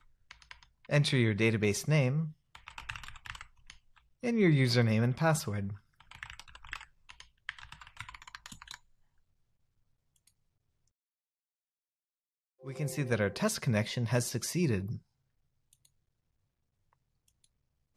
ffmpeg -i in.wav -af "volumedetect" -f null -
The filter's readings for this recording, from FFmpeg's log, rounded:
mean_volume: -34.6 dB
max_volume: -15.0 dB